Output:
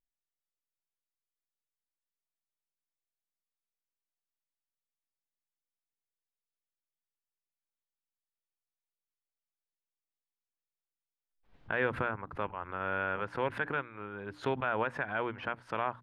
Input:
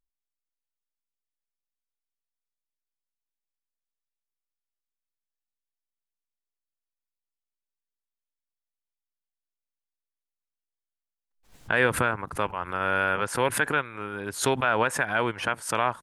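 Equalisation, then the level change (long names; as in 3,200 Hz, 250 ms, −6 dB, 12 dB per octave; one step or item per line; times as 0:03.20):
high-frequency loss of the air 340 metres
mains-hum notches 60/120/180/240/300 Hz
−6.5 dB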